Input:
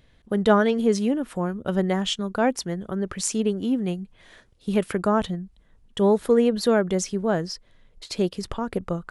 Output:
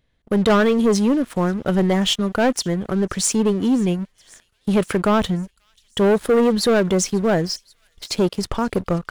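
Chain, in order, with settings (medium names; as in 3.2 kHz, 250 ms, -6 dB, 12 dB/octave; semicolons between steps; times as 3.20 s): waveshaping leveller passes 3; feedback echo behind a high-pass 536 ms, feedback 65%, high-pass 3.8 kHz, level -22.5 dB; trim -3.5 dB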